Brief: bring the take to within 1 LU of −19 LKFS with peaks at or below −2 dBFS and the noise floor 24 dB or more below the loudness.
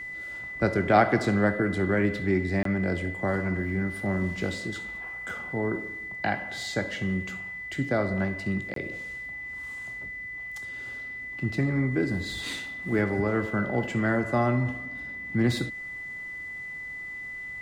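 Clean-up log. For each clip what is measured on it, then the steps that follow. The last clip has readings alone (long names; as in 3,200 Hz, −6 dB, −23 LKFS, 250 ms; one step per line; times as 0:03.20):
number of dropouts 2; longest dropout 23 ms; interfering tone 2,000 Hz; level of the tone −35 dBFS; integrated loudness −28.5 LKFS; sample peak −8.0 dBFS; target loudness −19.0 LKFS
→ repair the gap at 0:02.63/0:08.74, 23 ms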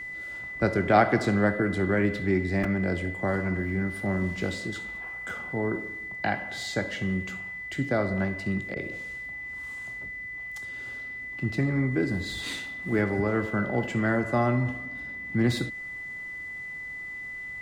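number of dropouts 0; interfering tone 2,000 Hz; level of the tone −35 dBFS
→ notch filter 2,000 Hz, Q 30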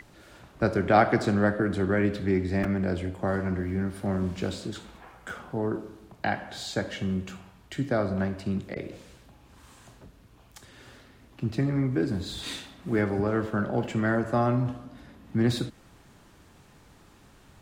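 interfering tone none found; integrated loudness −28.0 LKFS; sample peak −7.5 dBFS; target loudness −19.0 LKFS
→ level +9 dB
brickwall limiter −2 dBFS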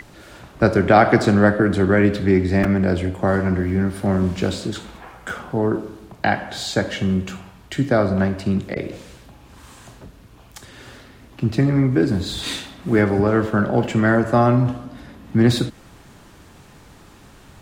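integrated loudness −19.5 LKFS; sample peak −2.0 dBFS; background noise floor −47 dBFS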